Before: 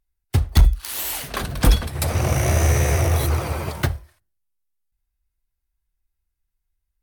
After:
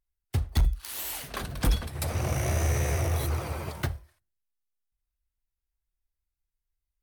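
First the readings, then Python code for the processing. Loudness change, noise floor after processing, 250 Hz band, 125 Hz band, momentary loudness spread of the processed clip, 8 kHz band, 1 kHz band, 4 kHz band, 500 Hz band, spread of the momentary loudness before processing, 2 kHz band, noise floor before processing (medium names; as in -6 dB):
-8.5 dB, under -85 dBFS, -8.5 dB, -8.5 dB, 8 LU, -8.5 dB, -8.5 dB, -8.5 dB, -8.5 dB, 8 LU, -8.5 dB, -79 dBFS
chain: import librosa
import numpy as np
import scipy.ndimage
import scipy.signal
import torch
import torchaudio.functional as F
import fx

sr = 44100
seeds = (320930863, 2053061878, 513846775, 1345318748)

y = 10.0 ** (-6.0 / 20.0) * np.tanh(x / 10.0 ** (-6.0 / 20.0))
y = F.gain(torch.from_numpy(y), -8.0).numpy()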